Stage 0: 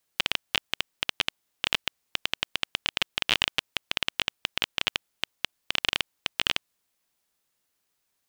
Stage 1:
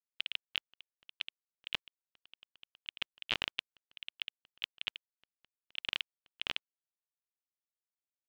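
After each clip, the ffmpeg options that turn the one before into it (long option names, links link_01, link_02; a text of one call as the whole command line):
ffmpeg -i in.wav -af "agate=range=-43dB:threshold=-28dB:ratio=16:detection=peak,lowpass=frequency=2800:poles=1,alimiter=limit=-20dB:level=0:latency=1:release=122,volume=5.5dB" out.wav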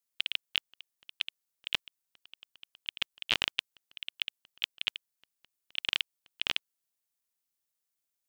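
ffmpeg -i in.wav -af "highshelf=frequency=4800:gain=10,volume=3dB" out.wav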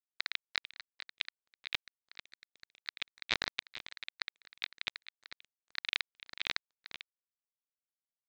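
ffmpeg -i in.wav -af "aresample=16000,acrusher=bits=7:mix=0:aa=0.000001,aresample=44100,aecho=1:1:445:0.224,aeval=exprs='val(0)*sin(2*PI*860*n/s+860*0.3/3.8*sin(2*PI*3.8*n/s))':channel_layout=same,volume=-2dB" out.wav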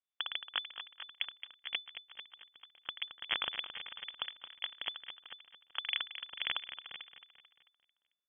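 ffmpeg -i in.wav -filter_complex "[0:a]aeval=exprs='abs(val(0))':channel_layout=same,asplit=2[link_01][link_02];[link_02]aecho=0:1:221|442|663|884|1105:0.282|0.135|0.0649|0.0312|0.015[link_03];[link_01][link_03]amix=inputs=2:normalize=0,lowpass=frequency=3000:width_type=q:width=0.5098,lowpass=frequency=3000:width_type=q:width=0.6013,lowpass=frequency=3000:width_type=q:width=0.9,lowpass=frequency=3000:width_type=q:width=2.563,afreqshift=-3500,volume=1dB" out.wav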